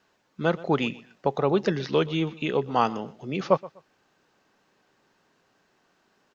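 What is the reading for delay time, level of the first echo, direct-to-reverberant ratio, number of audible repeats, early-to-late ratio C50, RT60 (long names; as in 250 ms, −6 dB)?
124 ms, −20.0 dB, no reverb audible, 2, no reverb audible, no reverb audible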